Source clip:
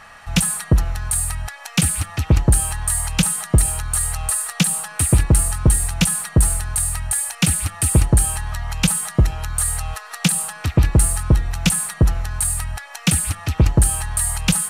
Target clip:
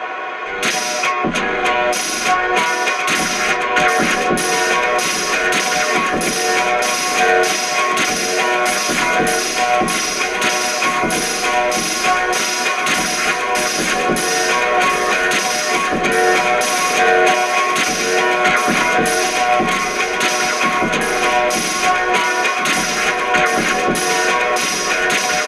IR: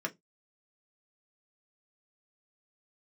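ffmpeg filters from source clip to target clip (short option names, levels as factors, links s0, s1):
-filter_complex "[0:a]equalizer=f=4200:w=1.4:g=10,dynaudnorm=f=210:g=3:m=2.24,asplit=2[s0][s1];[s1]highpass=f=720:p=1,volume=7.08,asoftclip=type=tanh:threshold=0.562[s2];[s0][s2]amix=inputs=2:normalize=0,lowpass=f=5300:p=1,volume=0.501,aeval=exprs='0.501*sin(PI/2*2.51*val(0)/0.501)':c=same,aecho=1:1:1128|2256|3384|4512|5640:0.531|0.202|0.0767|0.0291|0.0111[s3];[1:a]atrim=start_sample=2205,asetrate=88200,aresample=44100[s4];[s3][s4]afir=irnorm=-1:irlink=0,asetrate=25442,aresample=44100,volume=0.75"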